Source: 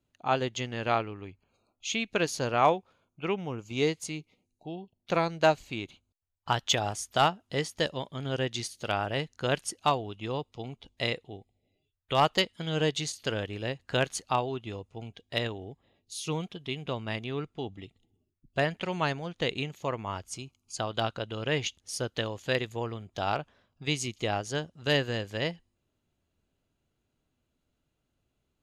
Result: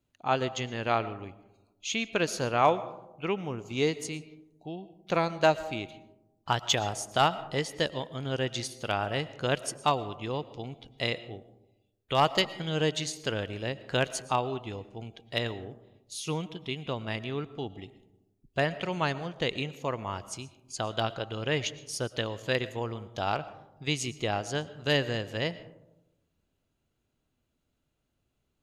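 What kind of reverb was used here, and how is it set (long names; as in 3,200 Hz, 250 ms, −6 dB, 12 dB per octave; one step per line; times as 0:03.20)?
comb and all-pass reverb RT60 0.97 s, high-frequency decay 0.3×, pre-delay 75 ms, DRR 16 dB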